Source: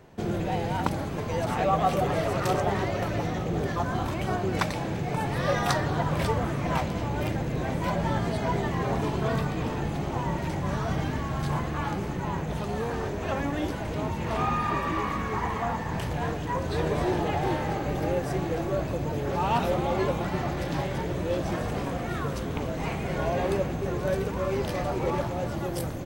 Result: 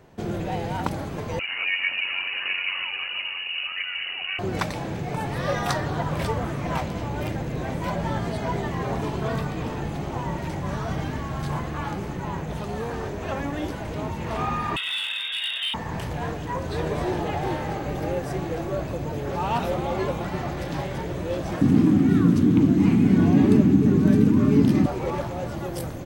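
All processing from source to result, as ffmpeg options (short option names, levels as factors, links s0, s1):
-filter_complex "[0:a]asettb=1/sr,asplit=3[s0][s1][s2];[s0]atrim=end=1.394[s3];[s1]atrim=start=1.39:end=4.39,asetpts=PTS-STARTPTS,afade=t=in:d=0.004:c=qsin,afade=t=out:st=2.996:d=0.004:c=qsin,tremolo=f=92:d=0.519,lowpass=f=2600:t=q:w=0.5098,lowpass=f=2600:t=q:w=0.6013,lowpass=f=2600:t=q:w=0.9,lowpass=f=2600:t=q:w=2.563,afreqshift=-3000[s4];[s2]atrim=start=4.386[s5];[s3][s4]acrossfade=d=0.004:c1=hsin:c2=qsin[s6];[s6][s5]acrossfade=d=0.004:c1=qsin:c2=hsin,asettb=1/sr,asplit=3[s7][s8][s9];[s7]atrim=end=14.764[s10];[s8]atrim=start=14.76:end=15.74,asetpts=PTS-STARTPTS,afade=t=in:d=0.004:c=qsin,afade=t=out:st=0.976:d=0.004:c=qsin,lowpass=f=3200:t=q:w=0.5098,lowpass=f=3200:t=q:w=0.6013,lowpass=f=3200:t=q:w=0.9,lowpass=f=3200:t=q:w=2.563,afreqshift=-3800,asoftclip=type=hard:threshold=0.0708,asplit=2[s11][s12];[s12]adelay=21,volume=0.398[s13];[s11][s13]amix=inputs=2:normalize=0,atrim=end_sample=43218[s14];[s9]atrim=start=15.736[s15];[s10][s14]acrossfade=d=0.004:c1=hsin:c2=qsin[s16];[s16][s15]acrossfade=d=0.004:c1=qsin:c2=hsin,asettb=1/sr,asplit=3[s17][s18][s19];[s17]atrim=end=21.614[s20];[s18]atrim=start=21.61:end=24.86,asetpts=PTS-STARTPTS,afade=t=in:d=0.004:c=qsin,afade=t=out:st=3.246:d=0.004:c=qsin,highpass=f=94:p=1,lowshelf=f=360:t=q:w=3:g=13,afreqshift=32[s21];[s19]atrim=start=24.856[s22];[s20][s21]acrossfade=d=0.004:c1=hsin:c2=qsin[s23];[s23][s22]acrossfade=d=0.004:c1=qsin:c2=hsin"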